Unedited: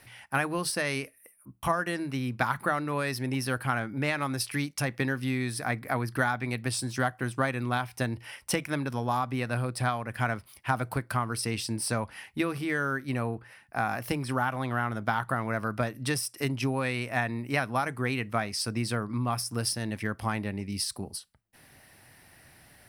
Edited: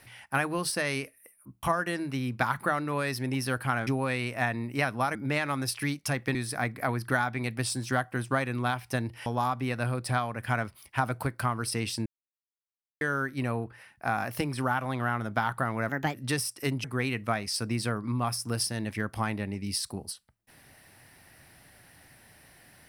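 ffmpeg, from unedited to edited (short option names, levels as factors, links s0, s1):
-filter_complex "[0:a]asplit=10[s0][s1][s2][s3][s4][s5][s6][s7][s8][s9];[s0]atrim=end=3.872[s10];[s1]atrim=start=16.618:end=17.902[s11];[s2]atrim=start=3.868:end=5.072[s12];[s3]atrim=start=5.418:end=8.332[s13];[s4]atrim=start=8.968:end=11.77,asetpts=PTS-STARTPTS,afade=t=out:st=2.798:d=0.004:c=hsin[s14];[s5]atrim=start=11.77:end=12.72,asetpts=PTS-STARTPTS,volume=0[s15];[s6]atrim=start=12.72:end=15.604,asetpts=PTS-STARTPTS,afade=t=in:d=0.004:c=hsin[s16];[s7]atrim=start=15.6:end=15.92,asetpts=PTS-STARTPTS,asetrate=56007,aresample=44100[s17];[s8]atrim=start=15.916:end=16.622[s18];[s9]atrim=start=17.898[s19];[s10][s11]acrossfade=d=0.004:c1=hsin:c2=hsin[s20];[s20][s12]acrossfade=d=0.004:c1=hsin:c2=hsin[s21];[s21][s13]acrossfade=d=0.004:c1=hsin:c2=hsin[s22];[s14][s15][s16]concat=n=3:v=0:a=1[s23];[s22][s23]acrossfade=d=0.004:c1=hsin:c2=hsin[s24];[s24][s17]acrossfade=d=0.004:c1=hsin:c2=hsin[s25];[s25][s18]acrossfade=d=0.004:c1=hsin:c2=hsin[s26];[s26][s19]acrossfade=d=0.004:c1=hsin:c2=hsin"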